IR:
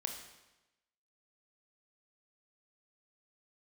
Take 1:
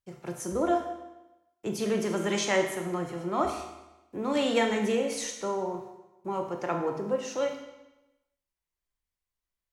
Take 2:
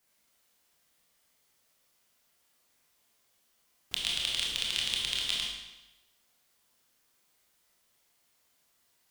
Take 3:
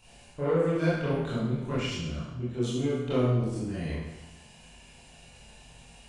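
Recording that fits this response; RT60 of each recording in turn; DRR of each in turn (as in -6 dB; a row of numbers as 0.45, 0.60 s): 1; 1.0, 1.0, 1.0 s; 3.5, -3.0, -10.5 dB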